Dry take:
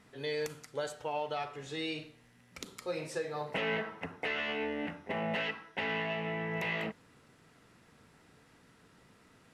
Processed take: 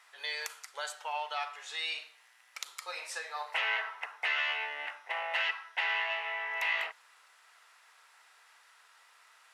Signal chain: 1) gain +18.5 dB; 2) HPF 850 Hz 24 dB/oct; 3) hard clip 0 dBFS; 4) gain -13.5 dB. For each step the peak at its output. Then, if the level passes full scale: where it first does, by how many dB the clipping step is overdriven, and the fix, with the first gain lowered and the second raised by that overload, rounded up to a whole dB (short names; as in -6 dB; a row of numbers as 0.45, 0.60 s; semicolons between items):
-3.0, -3.5, -3.5, -17.0 dBFS; no overload